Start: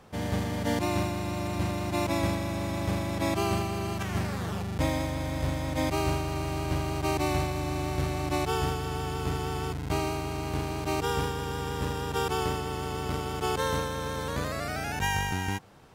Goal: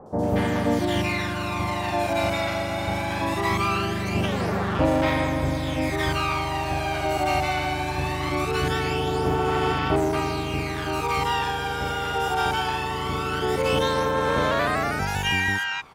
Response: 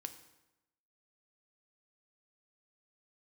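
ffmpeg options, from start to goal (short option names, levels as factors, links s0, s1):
-filter_complex "[0:a]aphaser=in_gain=1:out_gain=1:delay=1.4:decay=0.54:speed=0.21:type=sinusoidal,asplit=2[s0][s1];[s1]highpass=f=720:p=1,volume=7.08,asoftclip=type=tanh:threshold=0.398[s2];[s0][s2]amix=inputs=2:normalize=0,lowpass=f=2700:p=1,volume=0.501,acrossover=split=880|5900[s3][s4][s5];[s5]adelay=60[s6];[s4]adelay=230[s7];[s3][s7][s6]amix=inputs=3:normalize=0"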